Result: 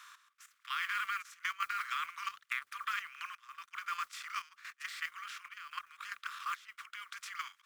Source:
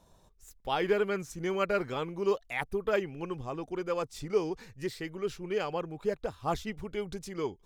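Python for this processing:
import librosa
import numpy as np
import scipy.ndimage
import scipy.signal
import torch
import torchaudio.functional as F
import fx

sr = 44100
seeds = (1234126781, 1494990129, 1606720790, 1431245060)

y = fx.bin_compress(x, sr, power=0.6)
y = scipy.signal.sosfilt(scipy.signal.butter(16, 1100.0, 'highpass', fs=sr, output='sos'), y)
y = fx.high_shelf(y, sr, hz=2900.0, db=-6.5)
y = fx.level_steps(y, sr, step_db=10)
y = fx.mod_noise(y, sr, seeds[0], snr_db=23)
y = fx.step_gate(y, sr, bpm=197, pattern='xx...x.xxxxxxx', floor_db=-12.0, edge_ms=4.5)
y = fx.band_squash(y, sr, depth_pct=70, at=(0.95, 3.3))
y = y * librosa.db_to_amplitude(4.5)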